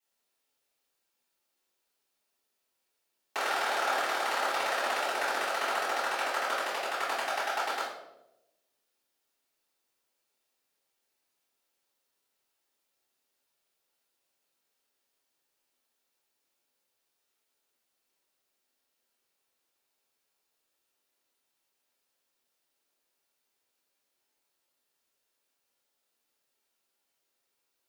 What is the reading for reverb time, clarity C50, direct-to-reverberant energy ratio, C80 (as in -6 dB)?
0.95 s, 2.0 dB, -15.5 dB, 6.0 dB